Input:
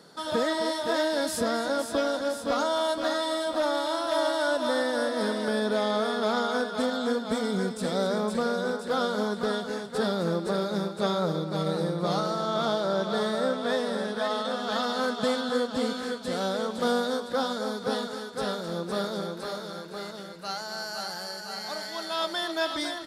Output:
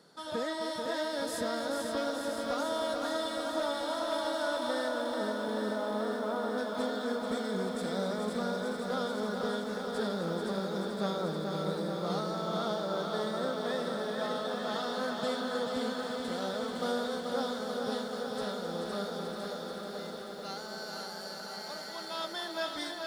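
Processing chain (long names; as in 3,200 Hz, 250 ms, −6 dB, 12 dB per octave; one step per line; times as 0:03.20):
0:04.88–0:06.58: low-pass filter 1,300 Hz 12 dB per octave
feedback echo at a low word length 435 ms, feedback 80%, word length 9 bits, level −5.5 dB
level −8 dB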